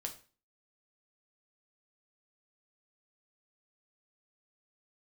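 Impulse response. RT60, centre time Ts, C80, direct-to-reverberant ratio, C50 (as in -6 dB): 0.35 s, 11 ms, 17.0 dB, 2.5 dB, 12.0 dB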